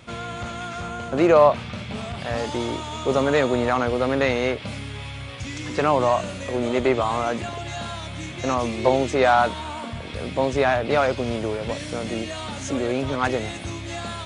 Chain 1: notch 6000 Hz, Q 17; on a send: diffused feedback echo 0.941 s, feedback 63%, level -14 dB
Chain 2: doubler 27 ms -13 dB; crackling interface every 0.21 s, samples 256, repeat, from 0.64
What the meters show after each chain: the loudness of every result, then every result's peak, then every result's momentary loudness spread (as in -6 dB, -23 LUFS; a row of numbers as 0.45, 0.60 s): -23.5, -23.5 LUFS; -4.5, -3.0 dBFS; 12, 14 LU